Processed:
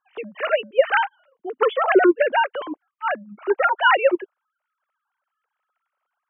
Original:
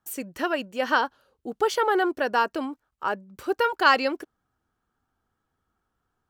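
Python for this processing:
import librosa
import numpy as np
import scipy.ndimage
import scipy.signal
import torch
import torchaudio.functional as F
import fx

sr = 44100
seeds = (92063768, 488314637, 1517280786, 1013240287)

y = fx.sine_speech(x, sr)
y = y * librosa.db_to_amplitude(5.0)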